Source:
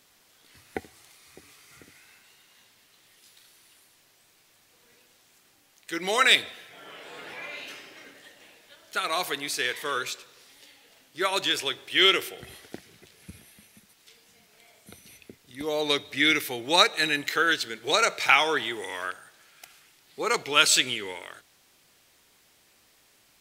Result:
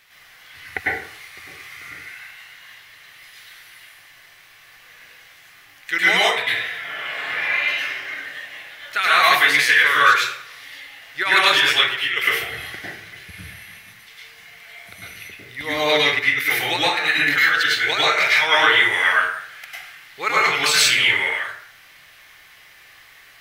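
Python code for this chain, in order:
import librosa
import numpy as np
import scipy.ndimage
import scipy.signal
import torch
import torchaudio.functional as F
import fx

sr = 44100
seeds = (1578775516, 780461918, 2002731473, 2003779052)

y = fx.graphic_eq(x, sr, hz=(250, 500, 2000, 8000), db=(-12, -5, 11, -7))
y = fx.over_compress(y, sr, threshold_db=-22.0, ratio=-0.5)
y = fx.rev_plate(y, sr, seeds[0], rt60_s=0.55, hf_ratio=0.6, predelay_ms=90, drr_db=-7.0)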